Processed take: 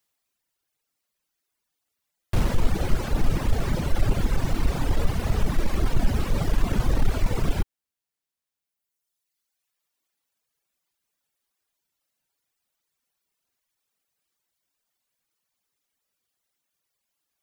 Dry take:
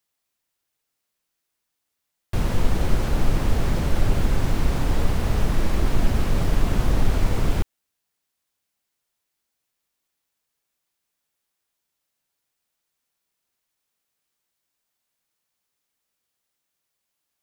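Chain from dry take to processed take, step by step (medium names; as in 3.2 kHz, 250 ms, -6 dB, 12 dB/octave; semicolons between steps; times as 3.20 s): reverb removal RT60 2 s; in parallel at -10.5 dB: wavefolder -18.5 dBFS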